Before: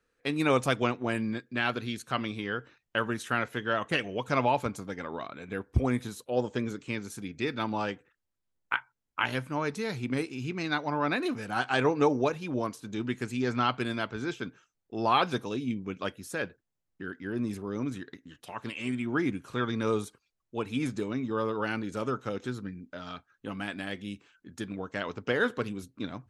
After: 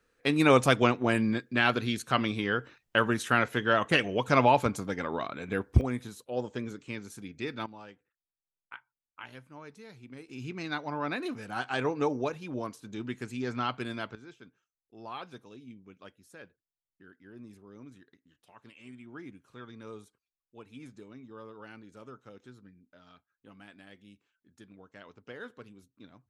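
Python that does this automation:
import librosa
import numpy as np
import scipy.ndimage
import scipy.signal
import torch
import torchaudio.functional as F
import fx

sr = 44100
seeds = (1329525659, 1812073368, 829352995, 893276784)

y = fx.gain(x, sr, db=fx.steps((0.0, 4.0), (5.81, -4.5), (7.66, -16.5), (10.29, -4.5), (14.15, -16.5)))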